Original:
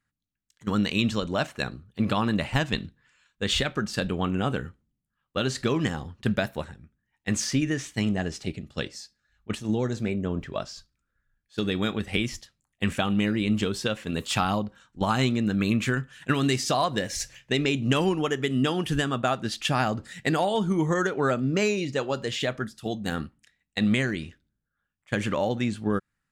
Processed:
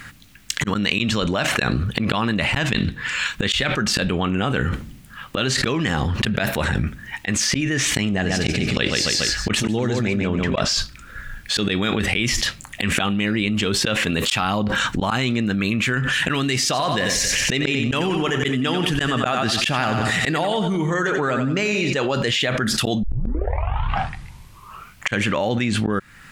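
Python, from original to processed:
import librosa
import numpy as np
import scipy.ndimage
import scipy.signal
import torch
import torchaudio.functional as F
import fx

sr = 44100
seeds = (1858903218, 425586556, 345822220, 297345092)

y = fx.echo_feedback(x, sr, ms=141, feedback_pct=26, wet_db=-6.5, at=(8.24, 10.64), fade=0.02)
y = fx.echo_feedback(y, sr, ms=90, feedback_pct=40, wet_db=-9.5, at=(16.64, 21.93))
y = fx.edit(y, sr, fx.tape_start(start_s=23.03, length_s=2.19), tone=tone)
y = fx.peak_eq(y, sr, hz=2300.0, db=6.5, octaves=1.6)
y = fx.auto_swell(y, sr, attack_ms=654.0)
y = fx.env_flatten(y, sr, amount_pct=100)
y = y * librosa.db_to_amplitude(-1.5)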